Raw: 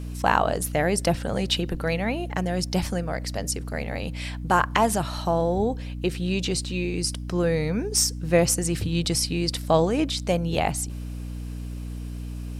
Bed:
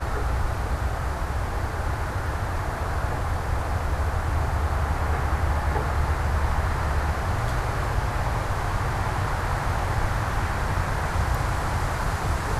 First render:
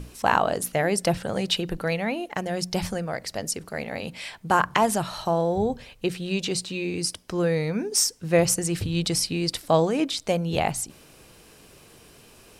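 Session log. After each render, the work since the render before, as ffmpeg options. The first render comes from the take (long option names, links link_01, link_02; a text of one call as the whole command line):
ffmpeg -i in.wav -af "bandreject=frequency=60:width_type=h:width=6,bandreject=frequency=120:width_type=h:width=6,bandreject=frequency=180:width_type=h:width=6,bandreject=frequency=240:width_type=h:width=6,bandreject=frequency=300:width_type=h:width=6" out.wav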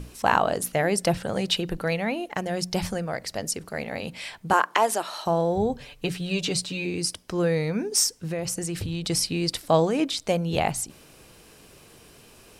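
ffmpeg -i in.wav -filter_complex "[0:a]asettb=1/sr,asplit=3[link_01][link_02][link_03];[link_01]atrim=end=4.534[link_04];[link_02]atrim=start=4.53:end=5.26,asetpts=PTS-STARTPTS,afade=type=in:duration=0.004:curve=qsin,afade=type=out:start_time=0.726:duration=0.004:curve=qsin,highpass=frequency=310:width=0.5412,highpass=frequency=310:width=1.3066[link_05];[link_03]atrim=start=5.256[link_06];[link_04][link_05]acrossfade=duration=0.004:curve1=hsin:curve2=qsin[link_07];[link_07][link_06]acrossfade=duration=0.004:curve1=qsin:curve2=hsin,asettb=1/sr,asplit=3[link_08][link_09][link_10];[link_08]atrim=end=5.804[link_11];[link_09]atrim=start=5.8:end=6.86,asetpts=PTS-STARTPTS,afade=type=in:duration=0.004:curve=qsin,afade=type=out:start_time=1.056:duration=0.004:curve=qsin,aecho=1:1:6.9:0.65,atrim=end_sample=46746[link_12];[link_10]atrim=start=6.856[link_13];[link_11][link_12]acrossfade=duration=0.004:curve1=hsin:curve2=qsin[link_14];[link_14][link_13]acrossfade=duration=0.004:curve1=qsin:curve2=hsin,asettb=1/sr,asplit=3[link_15][link_16][link_17];[link_15]atrim=end=8.154[link_18];[link_16]atrim=start=8.15:end=9.1,asetpts=PTS-STARTPTS,afade=type=in:duration=0.004:curve=qsin,afade=type=out:start_time=0.946:duration=0.004:curve=qsin,acompressor=threshold=-25dB:ratio=10:attack=3.2:release=140:knee=1:detection=peak[link_19];[link_17]atrim=start=9.096[link_20];[link_18][link_19]acrossfade=duration=0.004:curve1=hsin:curve2=qsin[link_21];[link_21][link_20]acrossfade=duration=0.004:curve1=qsin:curve2=hsin" out.wav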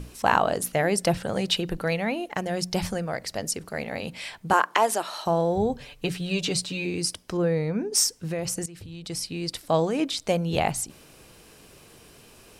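ffmpeg -i in.wav -filter_complex "[0:a]asettb=1/sr,asplit=3[link_01][link_02][link_03];[link_01]atrim=end=7.374[link_04];[link_02]atrim=start=7.37:end=7.93,asetpts=PTS-STARTPTS,afade=type=in:duration=0.004:curve=qsin,afade=type=out:start_time=0.556:duration=0.004:curve=qsin,highshelf=frequency=2000:gain=-10.5[link_05];[link_03]atrim=start=7.926[link_06];[link_04][link_05]acrossfade=duration=0.004:curve1=hsin:curve2=qsin[link_07];[link_07][link_06]acrossfade=duration=0.004:curve1=qsin:curve2=hsin,asplit=2[link_08][link_09];[link_08]atrim=end=8.66,asetpts=PTS-STARTPTS,afade=type=out:start_time=8.656:duration=0.004:curve=hsin:silence=0.188365[link_10];[link_09]atrim=start=8.66,asetpts=PTS-STARTPTS,afade=type=in:duration=1.64:silence=0.188365[link_11];[link_10][link_11]concat=n=2:v=0:a=1" out.wav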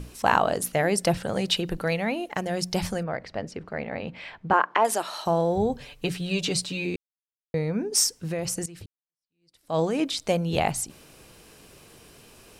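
ffmpeg -i in.wav -filter_complex "[0:a]asettb=1/sr,asplit=3[link_01][link_02][link_03];[link_01]atrim=end=3.034[link_04];[link_02]atrim=start=3.03:end=4.85,asetpts=PTS-STARTPTS,afade=type=in:duration=0.004:curve=qsin,afade=type=out:start_time=1.816:duration=0.004:curve=qsin,lowpass=2400[link_05];[link_03]atrim=start=4.846[link_06];[link_04][link_05]acrossfade=duration=0.004:curve1=hsin:curve2=qsin[link_07];[link_07][link_06]acrossfade=duration=0.004:curve1=qsin:curve2=hsin,asplit=4[link_08][link_09][link_10][link_11];[link_08]atrim=end=6.96,asetpts=PTS-STARTPTS,afade=type=out:start_time=6.956:duration=0.004:curve=hsin[link_12];[link_09]atrim=start=6.96:end=7.54,asetpts=PTS-STARTPTS,volume=0[link_13];[link_10]atrim=start=7.54:end=8.86,asetpts=PTS-STARTPTS,afade=type=in:duration=0.004:curve=hsin,afade=type=out:start_time=1.316:duration=0.004:curve=hsin[link_14];[link_11]atrim=start=8.86,asetpts=PTS-STARTPTS,afade=type=in:duration=0.93:curve=exp[link_15];[link_12][link_13][link_14][link_15]concat=n=4:v=0:a=1" out.wav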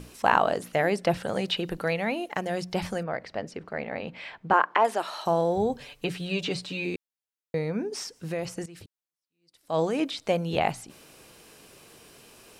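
ffmpeg -i in.wav -filter_complex "[0:a]acrossover=split=3700[link_01][link_02];[link_02]acompressor=threshold=-45dB:ratio=4:attack=1:release=60[link_03];[link_01][link_03]amix=inputs=2:normalize=0,lowshelf=frequency=130:gain=-10" out.wav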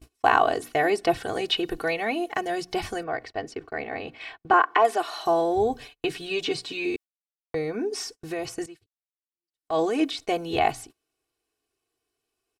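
ffmpeg -i in.wav -af "agate=range=-32dB:threshold=-42dB:ratio=16:detection=peak,aecho=1:1:2.7:0.85" out.wav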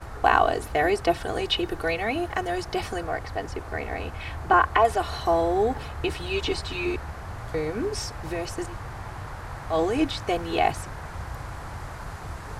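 ffmpeg -i in.wav -i bed.wav -filter_complex "[1:a]volume=-11dB[link_01];[0:a][link_01]amix=inputs=2:normalize=0" out.wav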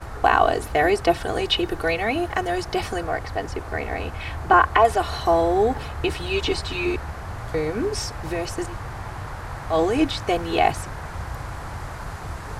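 ffmpeg -i in.wav -af "volume=3.5dB,alimiter=limit=-3dB:level=0:latency=1" out.wav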